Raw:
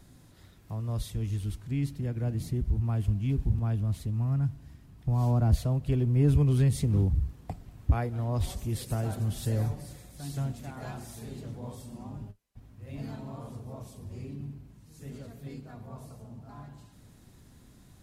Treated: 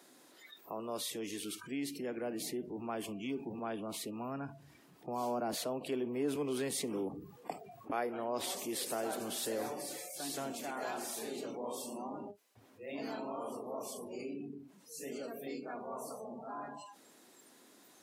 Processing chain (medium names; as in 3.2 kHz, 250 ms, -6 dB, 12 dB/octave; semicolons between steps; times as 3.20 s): high-pass 310 Hz 24 dB/octave; spectral noise reduction 25 dB; level flattener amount 50%; trim -3.5 dB